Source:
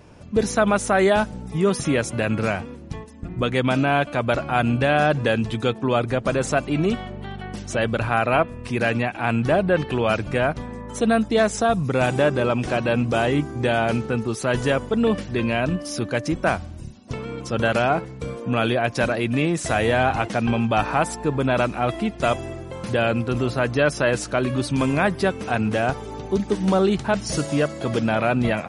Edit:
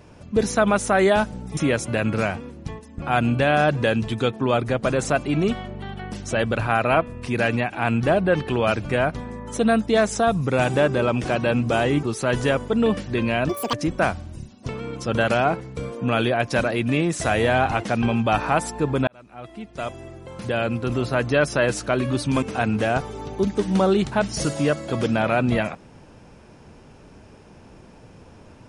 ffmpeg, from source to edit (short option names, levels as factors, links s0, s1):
-filter_complex "[0:a]asplit=8[s0][s1][s2][s3][s4][s5][s6][s7];[s0]atrim=end=1.572[s8];[s1]atrim=start=1.818:end=3.272[s9];[s2]atrim=start=4.438:end=13.452[s10];[s3]atrim=start=14.238:end=15.704[s11];[s4]atrim=start=15.7:end=16.18,asetpts=PTS-STARTPTS,asetrate=86877,aresample=44100,atrim=end_sample=10745,asetpts=PTS-STARTPTS[s12];[s5]atrim=start=16.176:end=21.52,asetpts=PTS-STARTPTS,afade=t=out:st=5.34:d=0.004:c=hsin[s13];[s6]atrim=start=21.52:end=24.872,asetpts=PTS-STARTPTS,afade=t=in:d=2.12[s14];[s7]atrim=start=25.348[s15];[s8][s9]acrossfade=d=0.004:c1=hsin:c2=hsin[s16];[s16][s10]acrossfade=d=0.004:c1=hsin:c2=hsin[s17];[s17][s11]acrossfade=d=0.004:c1=hsin:c2=hsin[s18];[s18][s12]acrossfade=d=0.004:c1=hsin:c2=hsin[s19];[s13][s14]concat=n=2:v=0:a=1[s20];[s19][s20]acrossfade=d=0.004:c1=hsin:c2=hsin[s21];[s21][s15]acrossfade=d=0.004:c1=hsin:c2=hsin"